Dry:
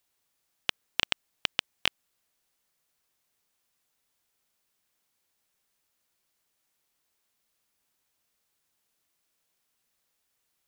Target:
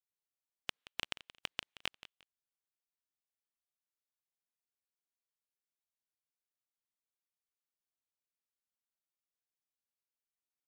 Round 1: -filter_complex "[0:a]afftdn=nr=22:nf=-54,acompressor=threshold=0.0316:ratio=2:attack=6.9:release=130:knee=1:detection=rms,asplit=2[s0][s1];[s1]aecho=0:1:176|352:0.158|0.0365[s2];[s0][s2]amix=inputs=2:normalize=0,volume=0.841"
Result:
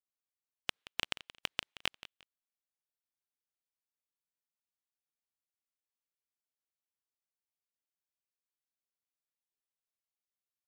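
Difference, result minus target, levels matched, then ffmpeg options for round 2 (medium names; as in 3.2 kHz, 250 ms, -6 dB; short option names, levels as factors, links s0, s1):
compression: peak gain reduction -4 dB
-filter_complex "[0:a]afftdn=nr=22:nf=-54,acompressor=threshold=0.0126:ratio=2:attack=6.9:release=130:knee=1:detection=rms,asplit=2[s0][s1];[s1]aecho=0:1:176|352:0.158|0.0365[s2];[s0][s2]amix=inputs=2:normalize=0,volume=0.841"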